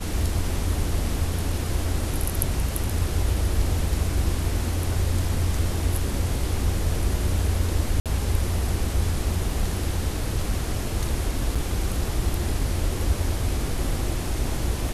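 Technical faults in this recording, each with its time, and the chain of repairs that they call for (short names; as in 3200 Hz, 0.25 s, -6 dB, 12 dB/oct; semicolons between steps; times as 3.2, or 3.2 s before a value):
8–8.06 gap 57 ms
11.55–11.56 gap 5.4 ms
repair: interpolate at 8, 57 ms; interpolate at 11.55, 5.4 ms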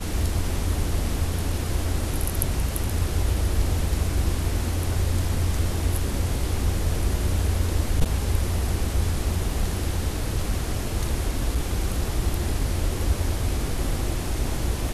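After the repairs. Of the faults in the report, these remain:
none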